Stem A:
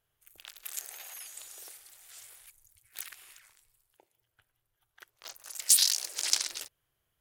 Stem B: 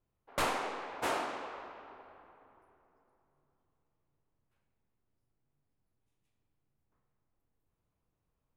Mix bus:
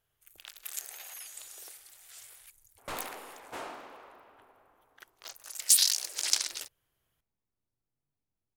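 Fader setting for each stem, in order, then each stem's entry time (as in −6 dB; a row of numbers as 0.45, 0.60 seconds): 0.0, −7.5 decibels; 0.00, 2.50 seconds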